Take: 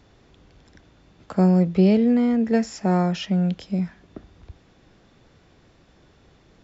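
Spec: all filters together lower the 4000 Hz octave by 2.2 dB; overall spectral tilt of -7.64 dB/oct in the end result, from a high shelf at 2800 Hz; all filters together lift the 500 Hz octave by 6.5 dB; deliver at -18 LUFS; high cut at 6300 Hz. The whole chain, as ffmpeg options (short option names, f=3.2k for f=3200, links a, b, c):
-af "lowpass=6.3k,equalizer=f=500:t=o:g=8,highshelf=f=2.8k:g=6,equalizer=f=4k:t=o:g=-8.5,volume=0.5dB"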